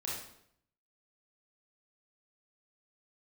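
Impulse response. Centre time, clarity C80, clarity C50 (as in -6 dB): 56 ms, 5.5 dB, 1.0 dB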